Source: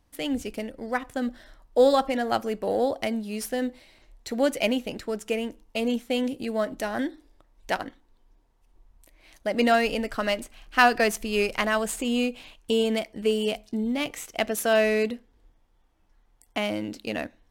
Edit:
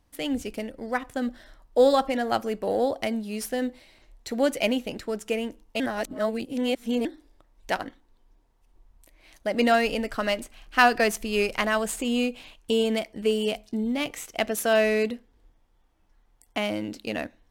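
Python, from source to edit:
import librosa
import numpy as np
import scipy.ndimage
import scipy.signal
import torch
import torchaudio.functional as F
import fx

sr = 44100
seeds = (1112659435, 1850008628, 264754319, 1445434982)

y = fx.edit(x, sr, fx.reverse_span(start_s=5.8, length_s=1.25), tone=tone)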